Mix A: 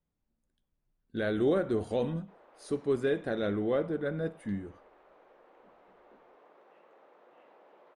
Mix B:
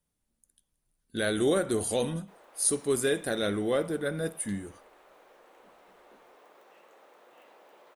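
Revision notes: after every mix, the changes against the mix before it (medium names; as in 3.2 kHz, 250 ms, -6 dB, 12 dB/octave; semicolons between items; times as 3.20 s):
master: remove tape spacing loss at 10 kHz 30 dB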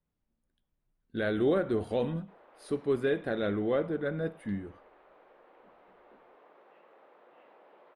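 master: add distance through air 400 m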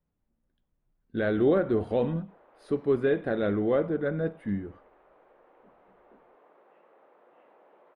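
speech +4.0 dB; master: add low-pass 1.8 kHz 6 dB/octave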